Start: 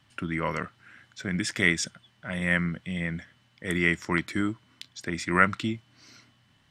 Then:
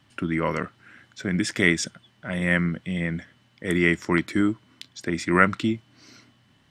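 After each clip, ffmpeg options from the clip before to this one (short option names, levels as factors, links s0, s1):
-af "equalizer=f=330:t=o:w=1.8:g=5.5,volume=1.19"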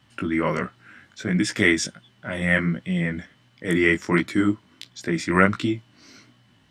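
-af "flanger=delay=15.5:depth=5.9:speed=1.4,volume=1.68"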